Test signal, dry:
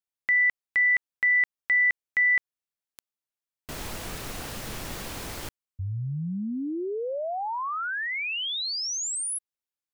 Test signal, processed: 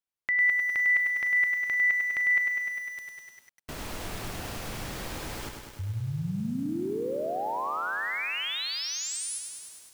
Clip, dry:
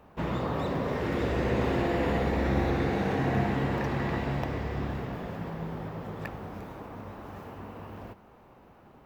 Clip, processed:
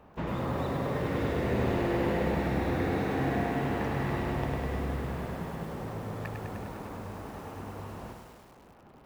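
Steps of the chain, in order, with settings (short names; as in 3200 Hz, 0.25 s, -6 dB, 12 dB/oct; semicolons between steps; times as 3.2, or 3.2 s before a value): in parallel at -2.5 dB: compressor 16:1, threshold -35 dBFS; on the sum: high shelf 4300 Hz -4 dB; lo-fi delay 0.101 s, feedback 80%, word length 8-bit, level -5.5 dB; gain -5 dB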